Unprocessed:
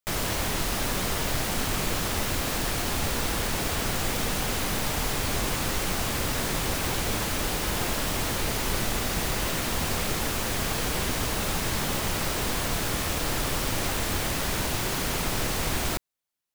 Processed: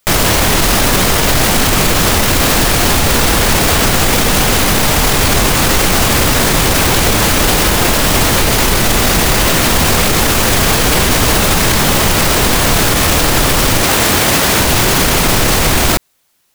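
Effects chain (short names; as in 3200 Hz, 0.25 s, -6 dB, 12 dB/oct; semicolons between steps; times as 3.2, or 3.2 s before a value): 13.83–14.61 HPF 140 Hz 6 dB/oct; maximiser +28 dB; gain -1 dB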